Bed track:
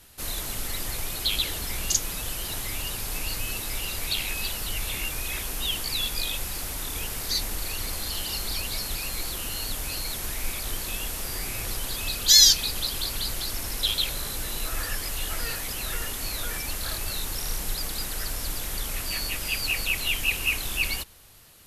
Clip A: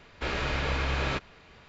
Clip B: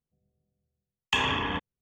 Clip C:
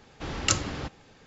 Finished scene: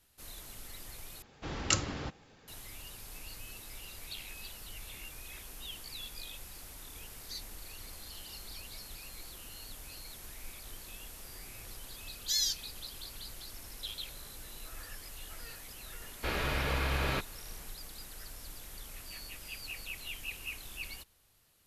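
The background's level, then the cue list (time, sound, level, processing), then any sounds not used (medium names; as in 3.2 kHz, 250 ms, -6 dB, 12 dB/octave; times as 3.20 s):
bed track -16 dB
1.22 s: replace with C -4.5 dB
16.02 s: add A -3 dB
not used: B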